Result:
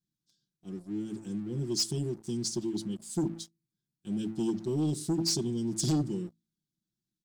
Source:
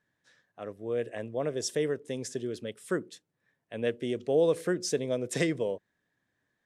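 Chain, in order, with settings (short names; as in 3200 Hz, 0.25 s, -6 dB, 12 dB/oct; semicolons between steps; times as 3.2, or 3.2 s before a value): elliptic band-stop 320–4400 Hz, stop band 40 dB; band shelf 1300 Hz +10 dB; notches 60/120/180/240/300/360 Hz; comb 5.2 ms, depth 94%; sample leveller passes 2; speed mistake 48 kHz file played as 44.1 kHz; gain -2 dB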